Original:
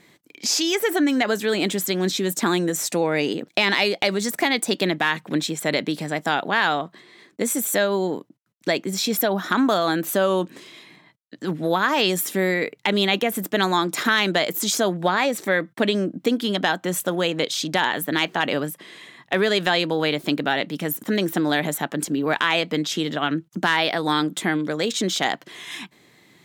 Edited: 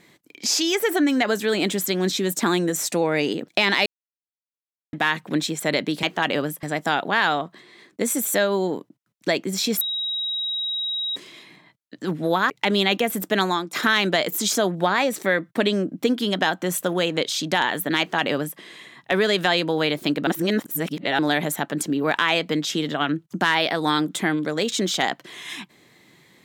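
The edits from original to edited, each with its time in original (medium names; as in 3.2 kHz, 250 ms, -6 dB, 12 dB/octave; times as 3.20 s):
3.86–4.93 s: mute
9.21–10.56 s: bleep 3.82 kHz -23.5 dBFS
11.90–12.72 s: delete
13.55–13.95 s: fade out equal-power, to -16 dB
18.21–18.81 s: copy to 6.03 s
20.49–21.41 s: reverse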